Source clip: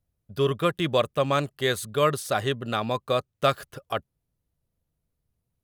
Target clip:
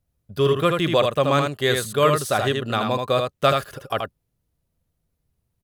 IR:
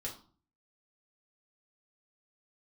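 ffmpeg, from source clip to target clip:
-af "aecho=1:1:79:0.596,volume=3.5dB"

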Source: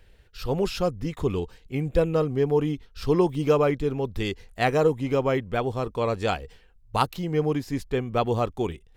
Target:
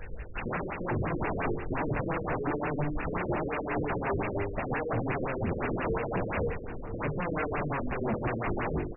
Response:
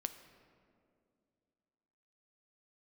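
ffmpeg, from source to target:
-filter_complex "[0:a]equalizer=frequency=5100:width_type=o:width=2.3:gain=3.5,bandreject=frequency=50:width_type=h:width=6,bandreject=frequency=100:width_type=h:width=6,bandreject=frequency=150:width_type=h:width=6,bandreject=frequency=200:width_type=h:width=6,bandreject=frequency=250:width_type=h:width=6,bandreject=frequency=300:width_type=h:width=6,bandreject=frequency=350:width_type=h:width=6,bandreject=frequency=400:width_type=h:width=6,bandreject=frequency=450:width_type=h:width=6,acompressor=threshold=-24dB:ratio=6,asoftclip=type=tanh:threshold=-24dB,flanger=delay=16.5:depth=7.2:speed=0.82,acrusher=bits=3:mode=log:mix=0:aa=0.000001,aeval=exprs='0.0531*sin(PI/2*6.31*val(0)/0.0531)':channel_layout=same,asplit=2[link_01][link_02];[link_02]adelay=991.3,volume=-11dB,highshelf=frequency=4000:gain=-22.3[link_03];[link_01][link_03]amix=inputs=2:normalize=0,asplit=2[link_04][link_05];[1:a]atrim=start_sample=2205,asetrate=43218,aresample=44100,adelay=80[link_06];[link_05][link_06]afir=irnorm=-1:irlink=0,volume=-7.5dB[link_07];[link_04][link_07]amix=inputs=2:normalize=0,afftfilt=real='re*lt(b*sr/1024,540*pow(2900/540,0.5+0.5*sin(2*PI*5.7*pts/sr)))':imag='im*lt(b*sr/1024,540*pow(2900/540,0.5+0.5*sin(2*PI*5.7*pts/sr)))':win_size=1024:overlap=0.75"

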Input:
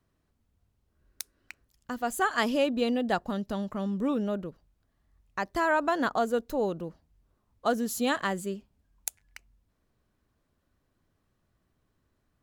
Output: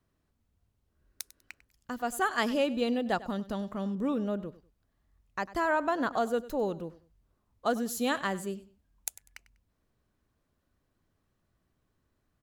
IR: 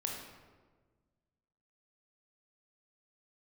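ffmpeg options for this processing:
-filter_complex "[0:a]aecho=1:1:98|196:0.133|0.0333,asettb=1/sr,asplit=3[link_01][link_02][link_03];[link_01]atrim=end=3.954[link_04];[link_02]atrim=start=3.95:end=6.14,asetpts=PTS-STARTPTS,afade=type=in:duration=0.004:curve=qsin,afade=type=out:start_time=2.186:duration=0.004:curve=qsin,adynamicequalizer=threshold=0.00891:dfrequency=1800:dqfactor=0.7:tfrequency=1800:tqfactor=0.7:attack=5:release=100:ratio=0.375:range=2.5:mode=cutabove:tftype=highshelf[link_05];[link_03]atrim=start=6.136[link_06];[link_04][link_05]acrossfade=duration=0.004:curve1=hsin:curve2=qsin[link_07];[link_07][link_06]acrossfade=duration=0.004:curve1=qsin:curve2=hsin,volume=-2dB"

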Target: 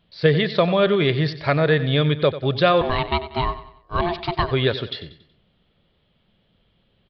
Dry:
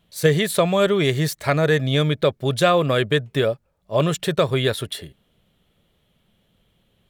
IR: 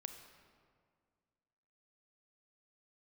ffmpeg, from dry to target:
-filter_complex "[0:a]asettb=1/sr,asplit=3[link_01][link_02][link_03];[link_01]atrim=end=2.814[link_04];[link_02]atrim=start=2.81:end=4.51,asetpts=PTS-STARTPTS,afade=type=in:duration=0.004:curve=qsin,afade=type=out:start_time=1.696:duration=0.004:curve=qsin,aeval=exprs='val(0)*sin(2*PI*520*n/s)':channel_layout=same[link_05];[link_03]atrim=start=4.506[link_06];[link_04][link_05]acrossfade=duration=0.004:curve1=hsin:curve2=qsin[link_07];[link_07][link_06]acrossfade=duration=0.004:curve1=qsin:curve2=hsin,aecho=1:1:93|186|279|372:0.2|0.0838|0.0352|0.0148,aresample=11025,aresample=44100"

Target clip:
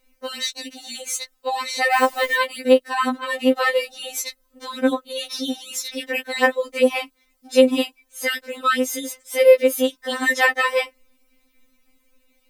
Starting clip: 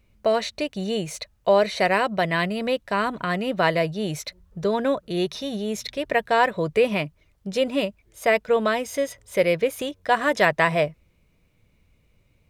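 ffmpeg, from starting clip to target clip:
ffmpeg -i in.wav -filter_complex "[0:a]asettb=1/sr,asplit=3[link_01][link_02][link_03];[link_01]atrim=end=1.934[link_04];[link_02]atrim=start=1.93:end=2.36,asetpts=PTS-STARTPTS,afade=type=in:duration=0.004:curve=qsin,afade=type=out:start_time=0.426:duration=0.004:curve=qsin,aeval=exprs='val(0)*gte(abs(val(0)),0.0178)':channel_layout=same[link_05];[link_03]atrim=start=2.356[link_06];[link_04][link_05]acrossfade=duration=0.004:curve1=hsin:curve2=qsin[link_07];[link_07][link_06]acrossfade=duration=0.004:curve1=qsin:curve2=hsin,crystalizer=i=1.5:c=0,afftfilt=real='re*3.46*eq(mod(b,12),0)':imag='im*3.46*eq(mod(b,12),0)':win_size=2048:overlap=0.75,volume=4dB" out.wav

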